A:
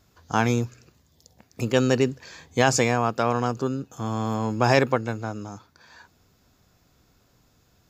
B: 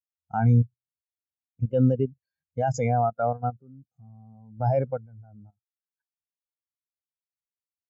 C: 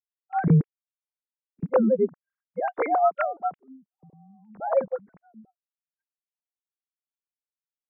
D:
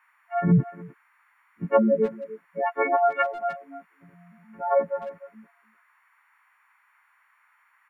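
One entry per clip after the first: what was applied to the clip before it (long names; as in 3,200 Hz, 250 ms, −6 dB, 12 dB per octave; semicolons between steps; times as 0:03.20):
comb filter 1.4 ms, depth 41%; output level in coarse steps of 12 dB; every bin expanded away from the loudest bin 2.5 to 1
three sine waves on the formant tracks
every partial snapped to a pitch grid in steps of 4 semitones; noise in a band 920–2,200 Hz −64 dBFS; far-end echo of a speakerphone 300 ms, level −14 dB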